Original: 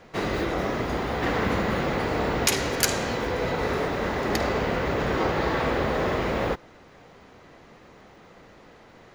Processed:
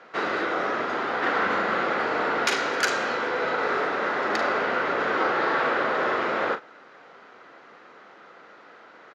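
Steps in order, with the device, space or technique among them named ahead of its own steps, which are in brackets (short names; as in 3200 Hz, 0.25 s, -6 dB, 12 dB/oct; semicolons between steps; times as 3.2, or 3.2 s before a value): intercom (BPF 340–4800 Hz; bell 1400 Hz +10 dB 0.51 oct; soft clip -10.5 dBFS, distortion -28 dB; doubler 40 ms -10 dB)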